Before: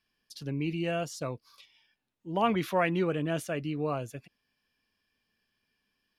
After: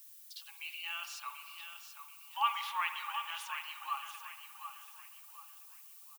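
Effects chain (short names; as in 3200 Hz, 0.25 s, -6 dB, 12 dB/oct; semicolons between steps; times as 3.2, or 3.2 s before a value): rippled Chebyshev high-pass 810 Hz, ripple 9 dB; on a send: feedback echo 0.734 s, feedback 36%, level -9 dB; on the sum: spring tank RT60 1.8 s, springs 57 ms, chirp 50 ms, DRR 8.5 dB; added noise violet -57 dBFS; gain +2 dB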